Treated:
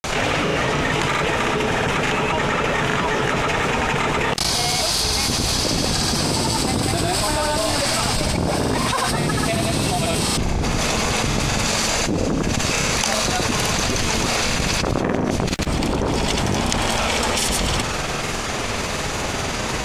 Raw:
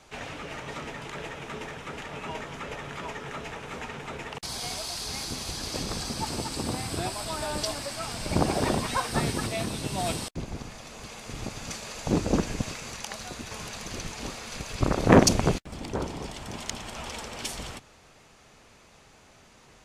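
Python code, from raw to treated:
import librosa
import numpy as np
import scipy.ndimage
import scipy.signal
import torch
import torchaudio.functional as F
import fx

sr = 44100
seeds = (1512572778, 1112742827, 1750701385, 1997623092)

y = fx.granulator(x, sr, seeds[0], grain_ms=100.0, per_s=20.0, spray_ms=100.0, spread_st=0)
y = fx.env_flatten(y, sr, amount_pct=100)
y = y * 10.0 ** (-7.5 / 20.0)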